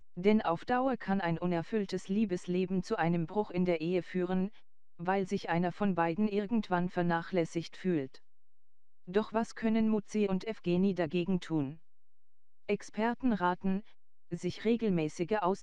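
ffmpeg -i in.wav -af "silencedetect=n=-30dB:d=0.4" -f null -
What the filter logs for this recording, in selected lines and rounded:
silence_start: 4.46
silence_end: 5.07 | silence_duration: 0.61
silence_start: 8.03
silence_end: 9.15 | silence_duration: 1.12
silence_start: 11.65
silence_end: 12.69 | silence_duration: 1.04
silence_start: 13.78
silence_end: 14.33 | silence_duration: 0.55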